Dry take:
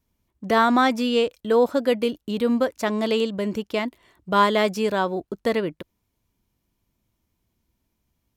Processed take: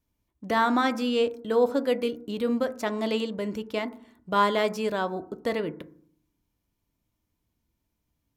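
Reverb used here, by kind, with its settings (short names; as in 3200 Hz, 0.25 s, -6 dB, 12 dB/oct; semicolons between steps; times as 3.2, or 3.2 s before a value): FDN reverb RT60 0.57 s, low-frequency decay 1.45×, high-frequency decay 0.25×, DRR 11 dB; gain -5 dB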